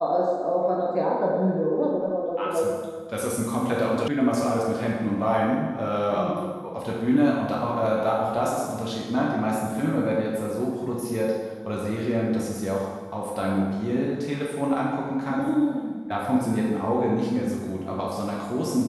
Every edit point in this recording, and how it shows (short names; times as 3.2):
4.08 sound cut off